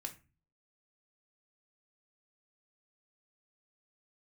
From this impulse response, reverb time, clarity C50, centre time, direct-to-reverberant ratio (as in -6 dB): 0.30 s, 14.0 dB, 9 ms, 3.0 dB